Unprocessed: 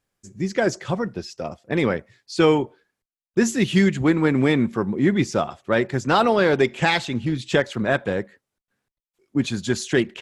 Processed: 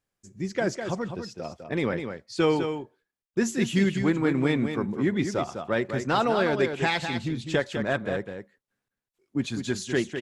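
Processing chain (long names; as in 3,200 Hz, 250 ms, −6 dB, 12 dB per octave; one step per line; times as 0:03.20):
single-tap delay 203 ms −7.5 dB
level −6 dB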